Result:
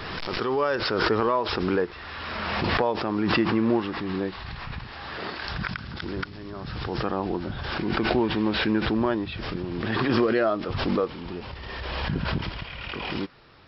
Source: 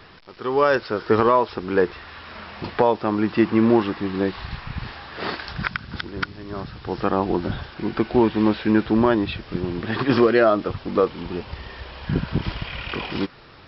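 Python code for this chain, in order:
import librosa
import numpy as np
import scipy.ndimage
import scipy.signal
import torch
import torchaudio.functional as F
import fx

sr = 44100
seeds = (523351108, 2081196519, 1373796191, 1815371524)

y = fx.pre_swell(x, sr, db_per_s=23.0)
y = y * librosa.db_to_amplitude(-7.0)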